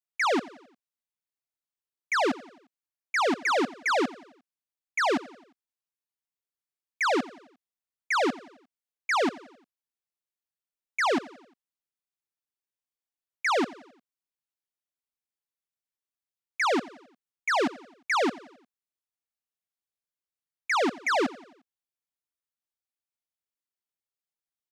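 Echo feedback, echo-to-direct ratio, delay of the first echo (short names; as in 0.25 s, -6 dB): 51%, -18.0 dB, 88 ms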